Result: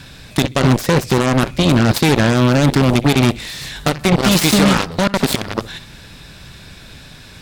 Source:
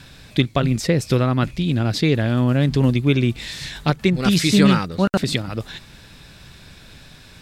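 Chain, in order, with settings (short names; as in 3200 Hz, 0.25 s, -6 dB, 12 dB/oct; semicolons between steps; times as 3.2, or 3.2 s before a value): flutter echo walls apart 10.5 m, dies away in 0.24 s; limiter -10.5 dBFS, peak gain reduction 9 dB; added harmonics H 7 -11 dB, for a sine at -10.5 dBFS; gain +6 dB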